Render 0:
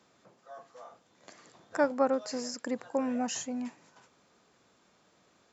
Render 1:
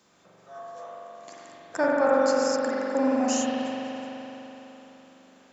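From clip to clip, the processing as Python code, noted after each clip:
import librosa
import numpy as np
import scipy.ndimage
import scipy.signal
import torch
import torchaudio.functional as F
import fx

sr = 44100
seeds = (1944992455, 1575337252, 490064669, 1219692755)

y = fx.high_shelf(x, sr, hz=4700.0, db=8.5)
y = fx.rev_spring(y, sr, rt60_s=3.8, pass_ms=(42,), chirp_ms=80, drr_db=-6.0)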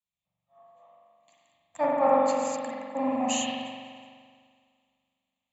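y = fx.fixed_phaser(x, sr, hz=1500.0, stages=6)
y = fx.band_widen(y, sr, depth_pct=100)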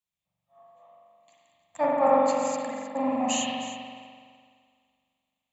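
y = x + 10.0 ** (-14.0 / 20.0) * np.pad(x, (int(312 * sr / 1000.0), 0))[:len(x)]
y = F.gain(torch.from_numpy(y), 1.0).numpy()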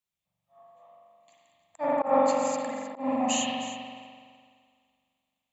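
y = fx.auto_swell(x, sr, attack_ms=152.0)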